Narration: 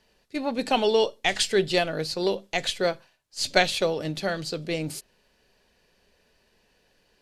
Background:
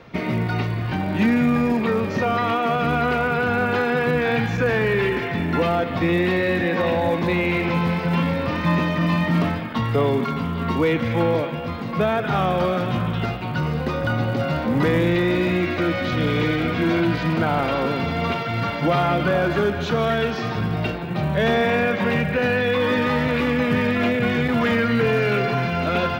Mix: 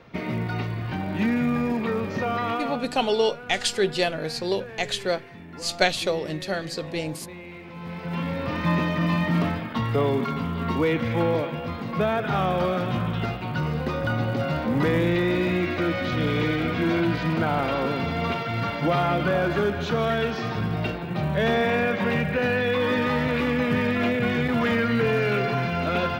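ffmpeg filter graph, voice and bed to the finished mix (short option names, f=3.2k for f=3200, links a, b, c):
-filter_complex "[0:a]adelay=2250,volume=-0.5dB[a];[1:a]volume=11.5dB,afade=t=out:st=2.53:d=0.35:silence=0.188365,afade=t=in:st=7.74:d=0.92:silence=0.149624[b];[a][b]amix=inputs=2:normalize=0"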